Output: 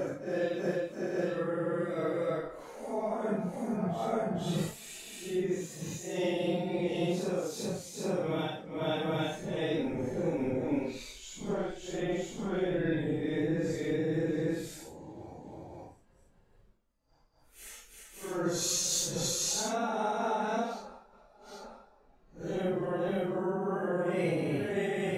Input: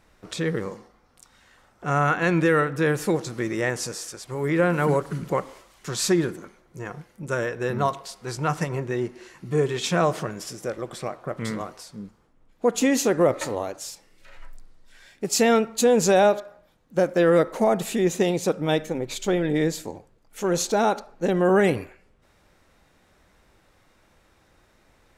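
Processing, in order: level quantiser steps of 15 dB; grains, grains 20/s, pitch spread up and down by 0 st; Paulstretch 5.3×, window 0.05 s, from 17.02

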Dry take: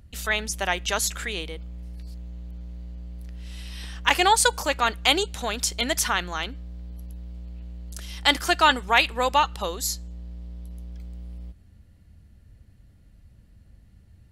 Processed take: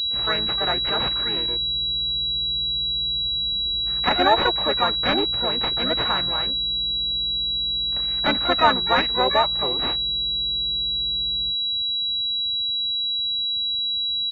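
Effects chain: tracing distortion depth 0.11 ms; HPF 80 Hz 12 dB/oct; harmoniser -5 st -3 dB, +12 st -6 dB; spectral freeze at 3.24, 0.63 s; pulse-width modulation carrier 3900 Hz

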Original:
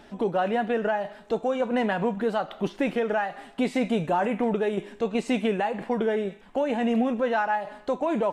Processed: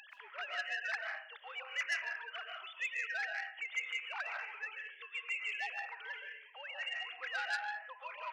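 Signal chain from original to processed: sine-wave speech; Bessel high-pass 2400 Hz, order 4; upward compressor, threshold -53 dBFS; digital reverb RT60 0.55 s, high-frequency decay 0.7×, pre-delay 95 ms, DRR 1 dB; core saturation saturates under 3100 Hz; gain +3.5 dB

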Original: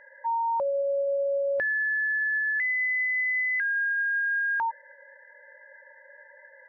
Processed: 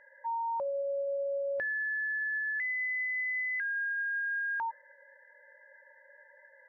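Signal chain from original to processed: de-hum 258 Hz, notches 5; gain -6.5 dB

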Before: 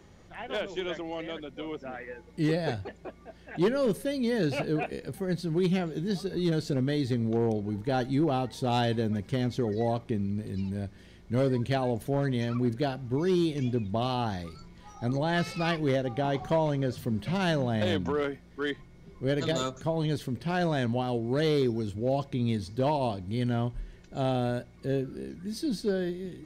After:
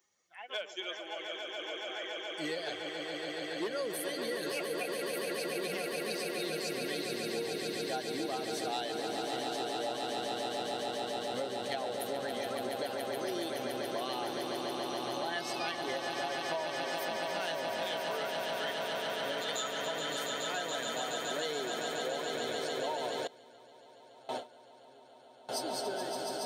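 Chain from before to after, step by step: per-bin expansion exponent 1.5; HPF 510 Hz 12 dB/oct; high shelf 3600 Hz +10.5 dB; swelling echo 0.141 s, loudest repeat 8, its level -7.5 dB; compressor 6:1, threshold -32 dBFS, peak gain reduction 9 dB; 23.27–25.49 gate with hold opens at -25 dBFS

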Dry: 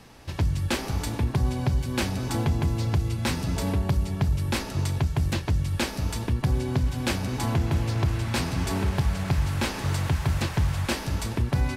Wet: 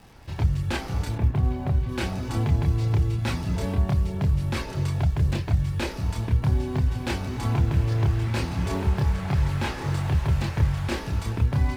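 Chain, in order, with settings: high shelf 4900 Hz -8.5 dB; crackle 83/s -42 dBFS; 1.15–1.89 air absorption 260 m; in parallel at -11 dB: short-mantissa float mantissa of 2-bit; on the sum: chorus voices 6, 0.44 Hz, delay 28 ms, depth 1.4 ms

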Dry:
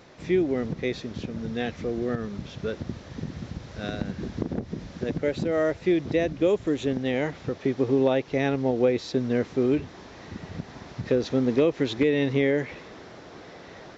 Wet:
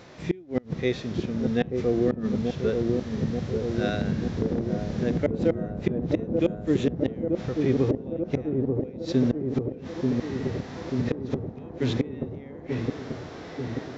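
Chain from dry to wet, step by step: harmonic-percussive split percussive -10 dB; flipped gate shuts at -18 dBFS, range -29 dB; dark delay 0.886 s, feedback 69%, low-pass 700 Hz, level -3 dB; gain +6.5 dB

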